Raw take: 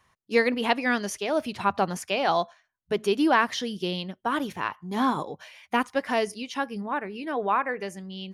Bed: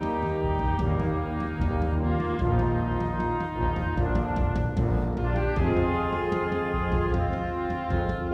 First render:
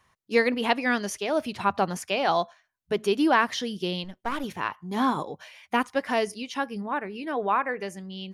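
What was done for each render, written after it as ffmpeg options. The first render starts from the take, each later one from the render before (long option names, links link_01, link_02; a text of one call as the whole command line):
ffmpeg -i in.wav -filter_complex "[0:a]asettb=1/sr,asplit=3[link_01][link_02][link_03];[link_01]atrim=end=4.044[link_04];[link_02]atrim=start=4.04:end=4.44,asetpts=PTS-STARTPTS,afade=type=in:duration=0.004:curve=qsin,afade=type=out:start_time=0.396:duration=0.004:curve=qsin,aeval=exprs='if(lt(val(0),0),0.251*val(0),val(0))':channel_layout=same[link_05];[link_03]atrim=start=4.436[link_06];[link_04][link_05]acrossfade=duration=0.004:curve1=hsin:curve2=qsin[link_07];[link_07][link_06]acrossfade=duration=0.004:curve1=qsin:curve2=hsin" out.wav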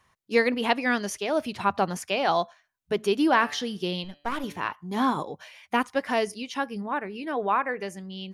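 ffmpeg -i in.wav -filter_complex "[0:a]asettb=1/sr,asplit=3[link_01][link_02][link_03];[link_01]atrim=end=3.274[link_04];[link_02]atrim=start=3.27:end=4.73,asetpts=PTS-STARTPTS,afade=type=in:duration=0.004:curve=qsin,afade=type=out:start_time=1.456:duration=0.004:curve=qsin,bandreject=frequency=145:width_type=h:width=4,bandreject=frequency=290:width_type=h:width=4,bandreject=frequency=435:width_type=h:width=4,bandreject=frequency=580:width_type=h:width=4,bandreject=frequency=725:width_type=h:width=4,bandreject=frequency=870:width_type=h:width=4,bandreject=frequency=1015:width_type=h:width=4,bandreject=frequency=1160:width_type=h:width=4,bandreject=frequency=1305:width_type=h:width=4,bandreject=frequency=1450:width_type=h:width=4,bandreject=frequency=1595:width_type=h:width=4,bandreject=frequency=1740:width_type=h:width=4,bandreject=frequency=1885:width_type=h:width=4,bandreject=frequency=2030:width_type=h:width=4,bandreject=frequency=2175:width_type=h:width=4,bandreject=frequency=2320:width_type=h:width=4,bandreject=frequency=2465:width_type=h:width=4,bandreject=frequency=2610:width_type=h:width=4,bandreject=frequency=2755:width_type=h:width=4,bandreject=frequency=2900:width_type=h:width=4,bandreject=frequency=3045:width_type=h:width=4,bandreject=frequency=3190:width_type=h:width=4,bandreject=frequency=3335:width_type=h:width=4,bandreject=frequency=3480:width_type=h:width=4,bandreject=frequency=3625:width_type=h:width=4,bandreject=frequency=3770:width_type=h:width=4,bandreject=frequency=3915:width_type=h:width=4,bandreject=frequency=4060:width_type=h:width=4,bandreject=frequency=4205:width_type=h:width=4,bandreject=frequency=4350:width_type=h:width=4,bandreject=frequency=4495:width_type=h:width=4,bandreject=frequency=4640:width_type=h:width=4,bandreject=frequency=4785:width_type=h:width=4[link_05];[link_03]atrim=start=4.726[link_06];[link_04][link_05]acrossfade=duration=0.004:curve1=hsin:curve2=qsin[link_07];[link_07][link_06]acrossfade=duration=0.004:curve1=qsin:curve2=hsin" out.wav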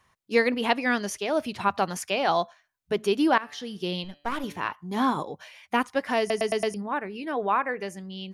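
ffmpeg -i in.wav -filter_complex "[0:a]asettb=1/sr,asplit=3[link_01][link_02][link_03];[link_01]atrim=end=1.684[link_04];[link_02]atrim=start=1.68:end=2.1,asetpts=PTS-STARTPTS,afade=type=in:duration=0.004:curve=qsin,afade=type=out:start_time=0.416:duration=0.004:curve=qsin,tiltshelf=frequency=970:gain=-3[link_05];[link_03]atrim=start=2.096[link_06];[link_04][link_05]acrossfade=duration=0.004:curve1=hsin:curve2=qsin[link_07];[link_07][link_06]acrossfade=duration=0.004:curve1=qsin:curve2=hsin,asplit=7[link_08][link_09][link_10][link_11][link_12][link_13][link_14];[link_08]atrim=end=3.38,asetpts=PTS-STARTPTS,afade=type=out:start_time=3.376:duration=0.004:curve=hsin:silence=0.11885[link_15];[link_09]atrim=start=3.38:end=6.302,asetpts=PTS-STARTPTS,afade=type=in:duration=0.55:silence=0.11885[link_16];[link_10]atrim=start=6.188:end=6.302[link_17];[link_11]atrim=start=6.188:end=6.302[link_18];[link_12]atrim=start=6.188:end=6.302[link_19];[link_13]atrim=start=6.188:end=6.302[link_20];[link_14]atrim=start=6.738[link_21];[link_15][link_16]concat=n=2:v=0:a=1[link_22];[link_22][link_17]acrossfade=duration=0.004:curve1=hsin:curve2=hsin[link_23];[link_23][link_18]acrossfade=duration=0.004:curve1=hsin:curve2=hsin[link_24];[link_24][link_19]acrossfade=duration=0.004:curve1=hsin:curve2=hsin[link_25];[link_25][link_20]acrossfade=duration=0.004:curve1=hsin:curve2=hsin[link_26];[link_26][link_21]acrossfade=duration=0.004:curve1=hsin:curve2=hsin" out.wav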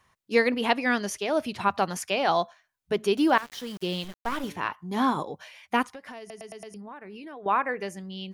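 ffmpeg -i in.wav -filter_complex "[0:a]asettb=1/sr,asplit=3[link_01][link_02][link_03];[link_01]atrim=end=3.174[link_04];[link_02]atrim=start=3.17:end=4.5,asetpts=PTS-STARTPTS,afade=type=in:duration=0.004:curve=qsin,afade=type=out:start_time=1.326:duration=0.004:curve=qsin,aeval=exprs='val(0)*gte(abs(val(0)),0.00944)':channel_layout=same[link_05];[link_03]atrim=start=4.496[link_06];[link_04][link_05]acrossfade=duration=0.004:curve1=hsin:curve2=qsin[link_07];[link_07][link_06]acrossfade=duration=0.004:curve1=qsin:curve2=hsin,asettb=1/sr,asplit=3[link_08][link_09][link_10];[link_08]atrim=end=5.834[link_11];[link_09]atrim=start=5.83:end=7.46,asetpts=PTS-STARTPTS,afade=type=in:duration=0.004:curve=qsin,afade=type=out:start_time=1.626:duration=0.004:curve=qsin,acompressor=threshold=-38dB:ratio=12:attack=3.2:release=140:knee=1:detection=peak[link_12];[link_10]atrim=start=7.456[link_13];[link_11][link_12]acrossfade=duration=0.004:curve1=hsin:curve2=qsin[link_14];[link_14][link_13]acrossfade=duration=0.004:curve1=qsin:curve2=hsin" out.wav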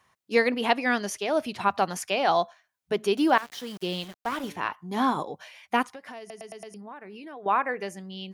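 ffmpeg -i in.wav -af "highpass=frequency=130:poles=1,equalizer=frequency=730:width_type=o:width=0.31:gain=2.5" out.wav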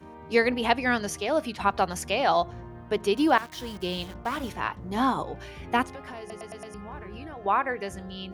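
ffmpeg -i in.wav -i bed.wav -filter_complex "[1:a]volume=-18dB[link_01];[0:a][link_01]amix=inputs=2:normalize=0" out.wav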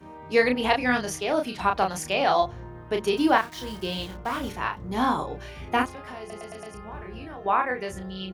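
ffmpeg -i in.wav -filter_complex "[0:a]asplit=2[link_01][link_02];[link_02]adelay=32,volume=-4.5dB[link_03];[link_01][link_03]amix=inputs=2:normalize=0" out.wav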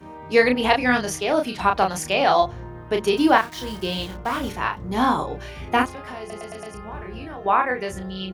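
ffmpeg -i in.wav -af "volume=4dB" out.wav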